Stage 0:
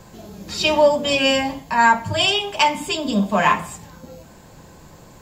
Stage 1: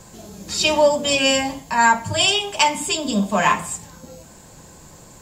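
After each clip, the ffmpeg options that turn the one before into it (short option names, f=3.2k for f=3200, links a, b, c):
-af "equalizer=f=8.2k:w=1:g=10.5,volume=-1dB"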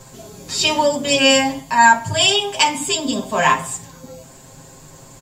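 -af "aecho=1:1:7.5:0.79"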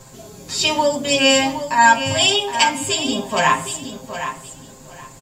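-af "aecho=1:1:767|1534|2301:0.316|0.0632|0.0126,volume=-1dB"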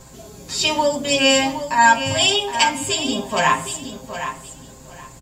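-af "aeval=exprs='val(0)+0.00398*(sin(2*PI*60*n/s)+sin(2*PI*2*60*n/s)/2+sin(2*PI*3*60*n/s)/3+sin(2*PI*4*60*n/s)/4+sin(2*PI*5*60*n/s)/5)':c=same,volume=-1dB"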